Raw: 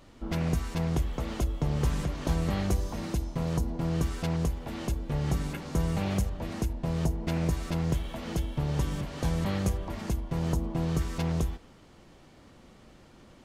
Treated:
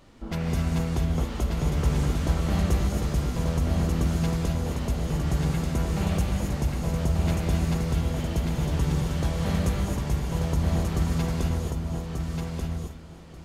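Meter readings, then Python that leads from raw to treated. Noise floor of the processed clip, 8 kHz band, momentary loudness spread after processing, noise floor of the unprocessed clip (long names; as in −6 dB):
−41 dBFS, +4.5 dB, 6 LU, −55 dBFS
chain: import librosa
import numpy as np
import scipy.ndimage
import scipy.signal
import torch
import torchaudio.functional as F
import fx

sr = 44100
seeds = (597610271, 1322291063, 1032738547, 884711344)

p1 = x + fx.echo_feedback(x, sr, ms=1186, feedback_pct=18, wet_db=-4.5, dry=0)
y = fx.rev_gated(p1, sr, seeds[0], gate_ms=290, shape='rising', drr_db=1.0)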